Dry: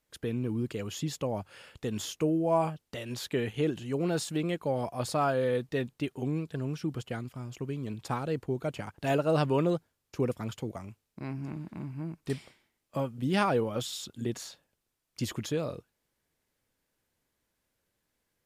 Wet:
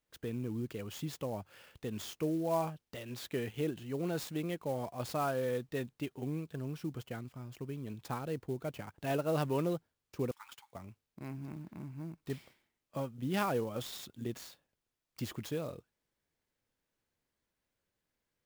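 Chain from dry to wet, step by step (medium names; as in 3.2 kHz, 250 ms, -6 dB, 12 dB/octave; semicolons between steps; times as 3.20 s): 10.31–10.73 s: brick-wall FIR high-pass 790 Hz; sampling jitter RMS 0.023 ms; trim -6 dB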